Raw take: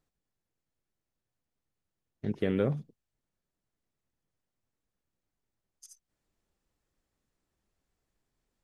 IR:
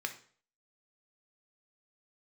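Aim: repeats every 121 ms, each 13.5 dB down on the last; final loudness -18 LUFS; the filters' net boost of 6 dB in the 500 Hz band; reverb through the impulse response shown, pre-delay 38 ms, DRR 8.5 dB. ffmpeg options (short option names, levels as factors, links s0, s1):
-filter_complex "[0:a]equalizer=f=500:t=o:g=7,aecho=1:1:121|242:0.211|0.0444,asplit=2[s0][s1];[1:a]atrim=start_sample=2205,adelay=38[s2];[s1][s2]afir=irnorm=-1:irlink=0,volume=0.299[s3];[s0][s3]amix=inputs=2:normalize=0,volume=3.16"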